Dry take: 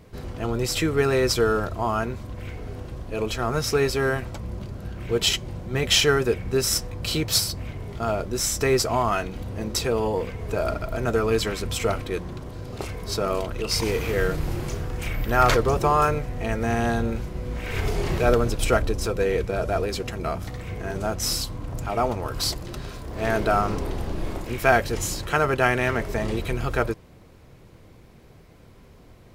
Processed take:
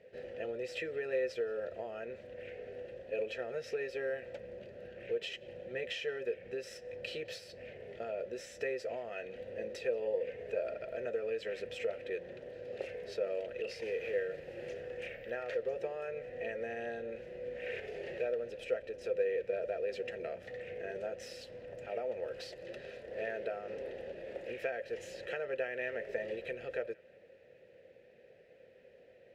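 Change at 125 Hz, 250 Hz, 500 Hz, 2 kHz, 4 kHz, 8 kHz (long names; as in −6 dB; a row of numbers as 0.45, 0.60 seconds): −30.0 dB, −22.0 dB, −11.0 dB, −14.5 dB, −21.5 dB, below −25 dB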